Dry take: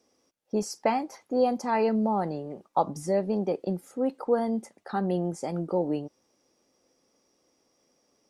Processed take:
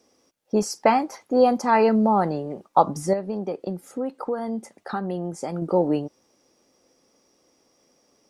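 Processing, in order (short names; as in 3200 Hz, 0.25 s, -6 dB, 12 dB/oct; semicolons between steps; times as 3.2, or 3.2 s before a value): dynamic EQ 1300 Hz, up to +5 dB, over -44 dBFS, Q 1.7; 3.13–5.62 compressor 3:1, threshold -33 dBFS, peak gain reduction 11.5 dB; gain +6 dB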